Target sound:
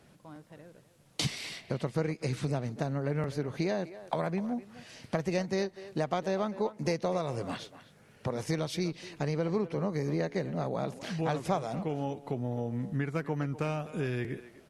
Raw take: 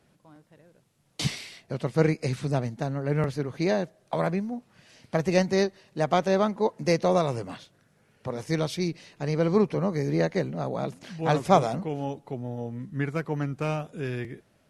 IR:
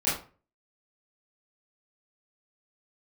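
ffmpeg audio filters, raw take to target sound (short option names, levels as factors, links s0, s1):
-filter_complex "[0:a]acompressor=threshold=0.02:ratio=4,asplit=2[s0][s1];[s1]adelay=250,highpass=300,lowpass=3400,asoftclip=type=hard:threshold=0.0376,volume=0.2[s2];[s0][s2]amix=inputs=2:normalize=0,volume=1.68"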